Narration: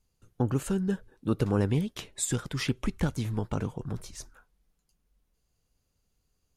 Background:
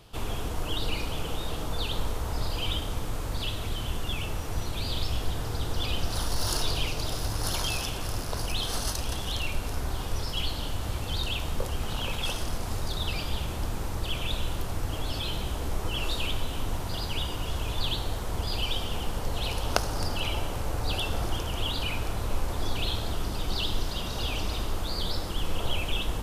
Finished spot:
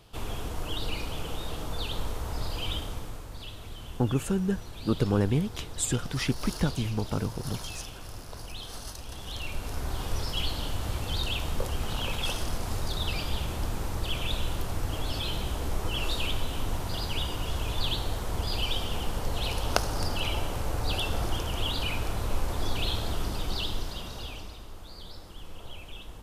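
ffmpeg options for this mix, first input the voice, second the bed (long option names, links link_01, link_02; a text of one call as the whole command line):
ffmpeg -i stem1.wav -i stem2.wav -filter_complex "[0:a]adelay=3600,volume=1dB[link_01];[1:a]volume=7.5dB,afade=type=out:start_time=2.78:duration=0.48:silence=0.421697,afade=type=in:start_time=9.07:duration=1.02:silence=0.316228,afade=type=out:start_time=23.25:duration=1.32:silence=0.199526[link_02];[link_01][link_02]amix=inputs=2:normalize=0" out.wav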